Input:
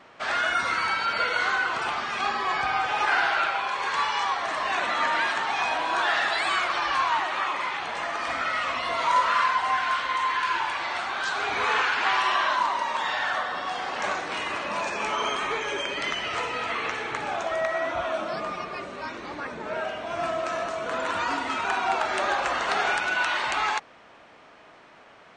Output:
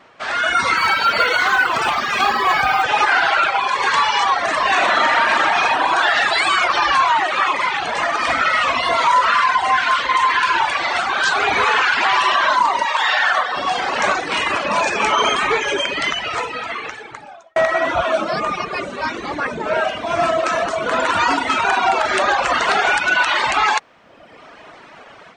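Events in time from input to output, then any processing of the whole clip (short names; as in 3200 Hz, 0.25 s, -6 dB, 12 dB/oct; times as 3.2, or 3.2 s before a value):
0.77–2.84 short-mantissa float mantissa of 4-bit
4.69–5.62 reverb throw, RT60 2.5 s, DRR -3.5 dB
12.85–13.57 weighting filter A
15.55–17.56 fade out
whole clip: reverb removal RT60 1.1 s; AGC gain up to 10 dB; maximiser +8.5 dB; gain -5.5 dB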